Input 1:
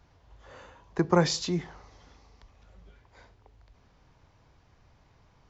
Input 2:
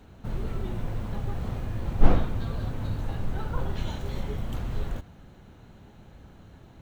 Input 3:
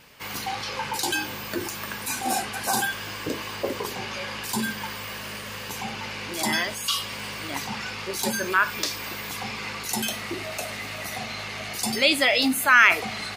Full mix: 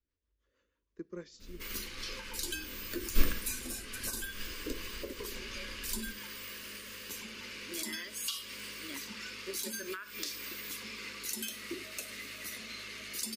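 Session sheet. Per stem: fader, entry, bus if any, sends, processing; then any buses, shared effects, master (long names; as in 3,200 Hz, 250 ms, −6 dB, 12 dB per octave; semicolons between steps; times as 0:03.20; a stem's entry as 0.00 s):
−8.0 dB, 0.00 s, no send, rotating-speaker cabinet horn 6.3 Hz
−7.0 dB, 1.15 s, no send, no processing
+1.5 dB, 1.40 s, no send, high-shelf EQ 8,100 Hz +5 dB; brickwall limiter −12.5 dBFS, peak gain reduction 10 dB; downward compressor 12 to 1, threshold −27 dBFS, peak gain reduction 10.5 dB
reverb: not used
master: phaser with its sweep stopped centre 320 Hz, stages 4; expander for the loud parts 1.5 to 1, over −44 dBFS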